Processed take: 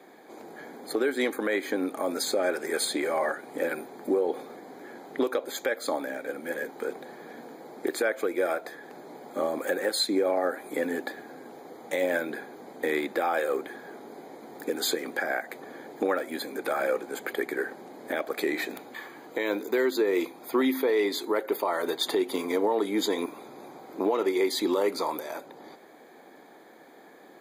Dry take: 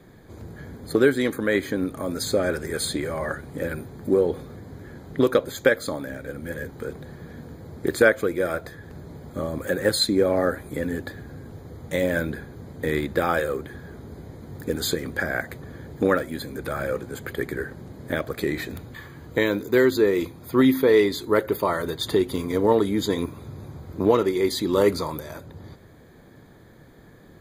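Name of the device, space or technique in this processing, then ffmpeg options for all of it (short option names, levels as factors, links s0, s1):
laptop speaker: -af "highpass=f=270:w=0.5412,highpass=f=270:w=1.3066,equalizer=f=780:t=o:w=0.46:g=9,equalizer=f=2300:t=o:w=0.28:g=5,alimiter=limit=0.15:level=0:latency=1:release=189"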